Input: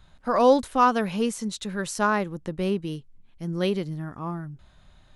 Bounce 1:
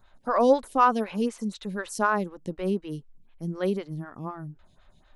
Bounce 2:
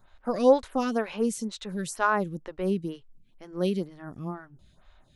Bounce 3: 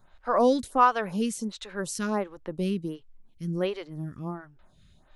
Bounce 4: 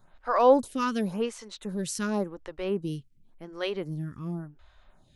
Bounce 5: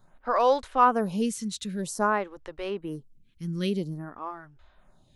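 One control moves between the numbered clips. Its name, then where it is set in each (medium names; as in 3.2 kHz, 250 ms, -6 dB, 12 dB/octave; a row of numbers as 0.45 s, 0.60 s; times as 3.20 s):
lamp-driven phase shifter, rate: 4 Hz, 2.1 Hz, 1.4 Hz, 0.91 Hz, 0.51 Hz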